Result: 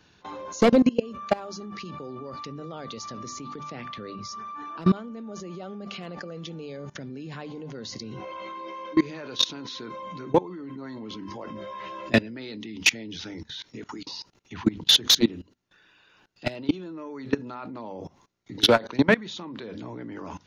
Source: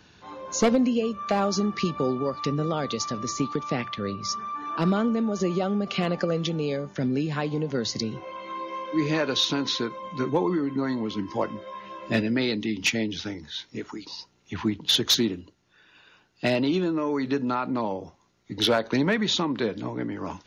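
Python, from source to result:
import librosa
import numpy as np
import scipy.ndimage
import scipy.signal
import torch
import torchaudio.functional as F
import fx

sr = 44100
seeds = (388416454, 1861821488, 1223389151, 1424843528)

y = fx.hum_notches(x, sr, base_hz=50, count=5)
y = fx.level_steps(y, sr, step_db=22)
y = F.gain(torch.from_numpy(y), 6.5).numpy()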